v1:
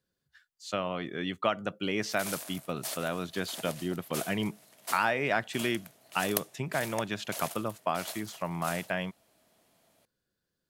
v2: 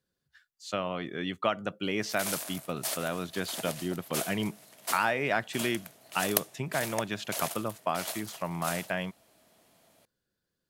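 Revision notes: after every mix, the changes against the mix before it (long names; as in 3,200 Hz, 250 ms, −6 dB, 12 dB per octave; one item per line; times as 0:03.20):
background +4.0 dB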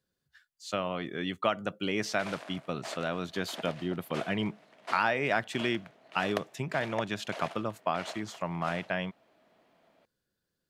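background: add band-pass filter 180–2,500 Hz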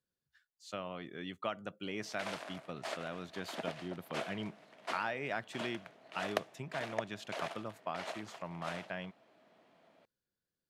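speech −9.5 dB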